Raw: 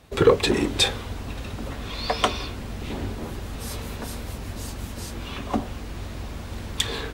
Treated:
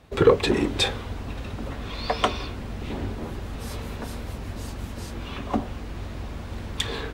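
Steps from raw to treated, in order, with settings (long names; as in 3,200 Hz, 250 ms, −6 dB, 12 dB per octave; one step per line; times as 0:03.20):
high-shelf EQ 4,500 Hz −8 dB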